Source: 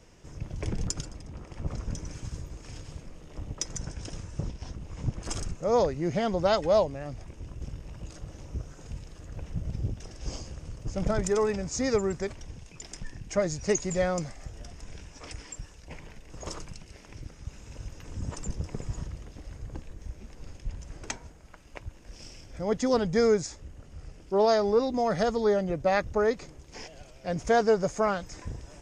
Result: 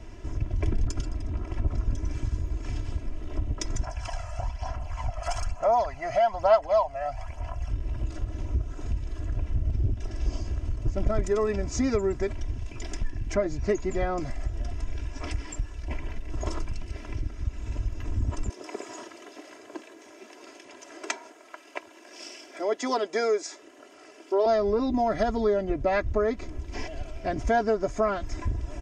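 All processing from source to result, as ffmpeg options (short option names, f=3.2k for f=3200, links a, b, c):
-filter_complex "[0:a]asettb=1/sr,asplit=3[a][b][c];[a]atrim=end=3.834[d];[b]atrim=start=3.83:end=7.7,asetpts=PTS-STARTPTS,afade=t=in:d=0.004:c=qsin,afade=t=out:st=3.866:d=0.004:c=qsin,lowshelf=f=510:t=q:w=3:g=-13,aphaser=in_gain=1:out_gain=1:delay=1.6:decay=0.5:speed=1.1:type=sinusoidal,bandreject=f=3.7k:w=7.5[e];[c]atrim=start=7.696[f];[d][e]acrossfade=d=0.004:c1=hsin:c2=qsin[g];[g][f]acrossfade=d=0.004:c1=qsin:c2=hsin,asettb=1/sr,asplit=3[h][i][j];[h]atrim=end=13.344[k];[i]atrim=start=13.34:end=14.2,asetpts=PTS-STARTPTS,afade=t=in:d=0.004:c=qsin,afade=t=out:st=0.856:d=0.004:c=qsin,lowpass=f=3.1k:p=1,bandreject=f=570:w=15[l];[j]atrim=start=14.196[m];[k][l]acrossfade=d=0.004:c1=hsin:c2=qsin[n];[n][m]acrossfade=d=0.004:c1=qsin:c2=hsin,asettb=1/sr,asplit=3[o][p][q];[o]atrim=end=18.494[r];[p]atrim=start=18.49:end=24.46,asetpts=PTS-STARTPTS,afade=t=in:d=0.004:c=qsin,afade=t=out:st=5.966:d=0.004:c=qsin,highpass=f=360:w=0.5412,highpass=f=360:w=1.3066,highshelf=f=3.9k:g=5.5[s];[q]atrim=start=24.456[t];[r][s]acrossfade=d=0.004:c1=hsin:c2=qsin[u];[u][t]acrossfade=d=0.004:c1=qsin:c2=hsin,bass=f=250:g=6,treble=f=4k:g=-9,aecho=1:1:3:0.88,acompressor=threshold=-34dB:ratio=2,volume=6dB"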